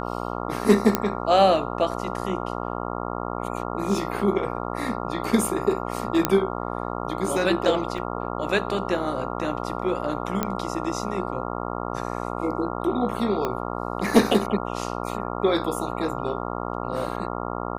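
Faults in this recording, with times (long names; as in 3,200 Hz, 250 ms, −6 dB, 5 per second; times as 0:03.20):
mains buzz 60 Hz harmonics 23 −30 dBFS
0:00.95: click −5 dBFS
0:06.25: click −3 dBFS
0:07.98: drop-out 3.3 ms
0:10.43: click −9 dBFS
0:13.45: click −12 dBFS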